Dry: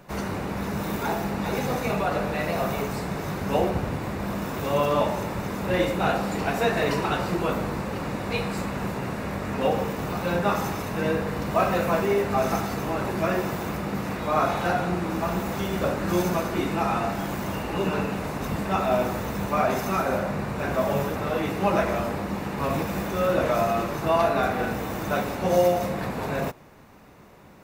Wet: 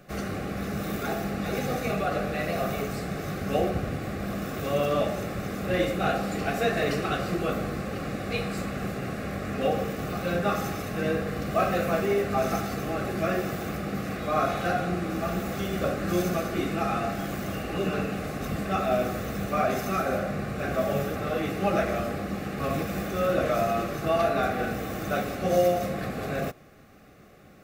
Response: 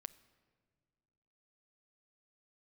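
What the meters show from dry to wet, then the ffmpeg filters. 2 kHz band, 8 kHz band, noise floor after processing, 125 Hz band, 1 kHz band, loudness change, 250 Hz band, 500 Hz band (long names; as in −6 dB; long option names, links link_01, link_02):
−2.0 dB, −2.0 dB, −35 dBFS, −2.0 dB, −3.5 dB, −2.5 dB, −2.0 dB, −2.0 dB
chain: -af "asuperstop=centerf=940:order=8:qfactor=3.9,volume=-2dB"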